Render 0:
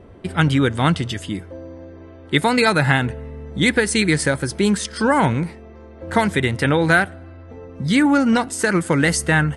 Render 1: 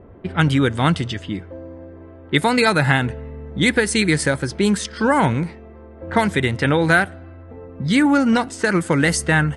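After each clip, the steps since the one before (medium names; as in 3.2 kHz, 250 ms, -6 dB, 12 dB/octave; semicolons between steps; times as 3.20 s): level-controlled noise filter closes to 1.6 kHz, open at -14 dBFS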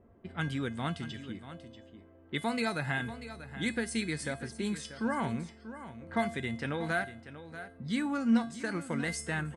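feedback comb 230 Hz, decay 0.35 s, harmonics odd, mix 80%; delay 638 ms -13 dB; trim -4.5 dB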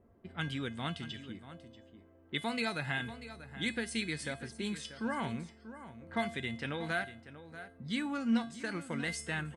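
dynamic bell 3.1 kHz, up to +7 dB, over -53 dBFS, Q 1.3; trim -4 dB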